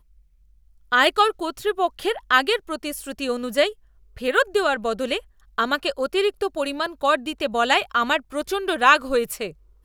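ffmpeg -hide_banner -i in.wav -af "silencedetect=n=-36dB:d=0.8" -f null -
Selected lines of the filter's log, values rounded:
silence_start: 0.00
silence_end: 0.92 | silence_duration: 0.92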